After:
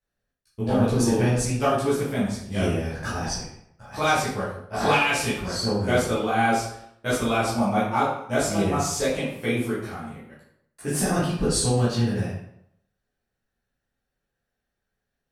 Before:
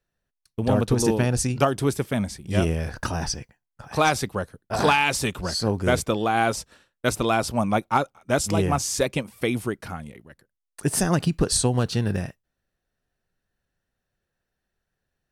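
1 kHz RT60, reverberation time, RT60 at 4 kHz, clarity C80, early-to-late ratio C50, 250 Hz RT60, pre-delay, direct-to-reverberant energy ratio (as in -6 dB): 0.70 s, 0.70 s, 0.55 s, 5.5 dB, 1.5 dB, 0.75 s, 9 ms, -11.0 dB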